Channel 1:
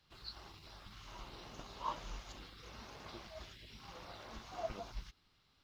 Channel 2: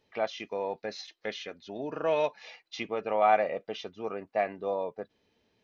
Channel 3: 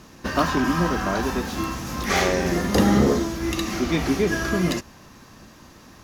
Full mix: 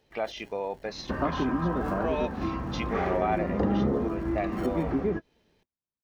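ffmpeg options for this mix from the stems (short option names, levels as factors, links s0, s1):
-filter_complex "[0:a]acrusher=samples=36:mix=1:aa=0.000001,asoftclip=type=tanh:threshold=0.0299,volume=1,asplit=2[s0][s1];[1:a]volume=1.26[s2];[2:a]lowpass=1200,adelay=850,volume=1[s3];[s1]apad=whole_len=303458[s4];[s3][s4]sidechaingate=range=0.002:threshold=0.00112:ratio=16:detection=peak[s5];[s0][s2][s5]amix=inputs=3:normalize=0,acompressor=threshold=0.0398:ratio=2"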